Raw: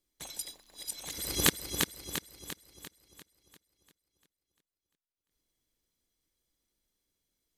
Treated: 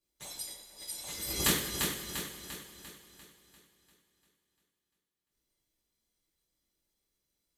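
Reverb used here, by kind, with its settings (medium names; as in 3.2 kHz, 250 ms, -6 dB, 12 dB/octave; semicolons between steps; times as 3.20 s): two-slope reverb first 0.47 s, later 2.9 s, from -16 dB, DRR -7 dB; trim -8 dB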